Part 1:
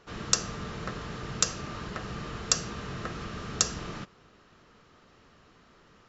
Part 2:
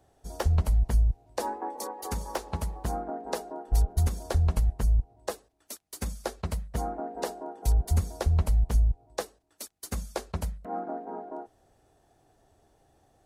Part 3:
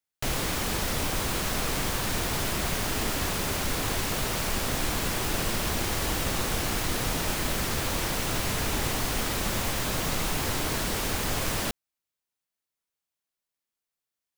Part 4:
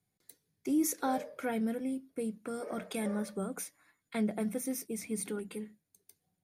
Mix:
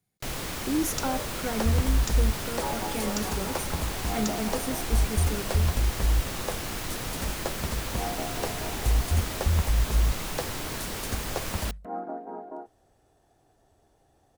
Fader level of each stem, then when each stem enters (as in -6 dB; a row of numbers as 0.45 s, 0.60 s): -11.0 dB, -0.5 dB, -5.0 dB, +2.0 dB; 0.65 s, 1.20 s, 0.00 s, 0.00 s